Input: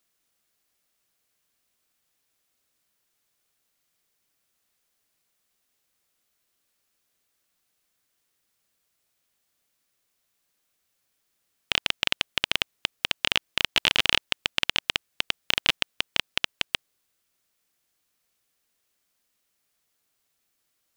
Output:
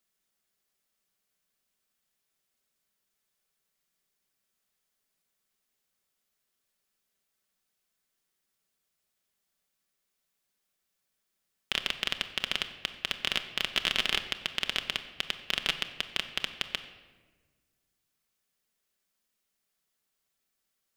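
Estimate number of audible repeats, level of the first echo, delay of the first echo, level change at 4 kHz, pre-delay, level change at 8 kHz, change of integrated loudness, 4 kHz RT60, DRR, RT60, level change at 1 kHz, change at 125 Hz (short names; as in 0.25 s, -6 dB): none, none, none, -5.5 dB, 5 ms, -6.0 dB, -5.5 dB, 0.90 s, 6.0 dB, 1.4 s, -5.5 dB, -6.0 dB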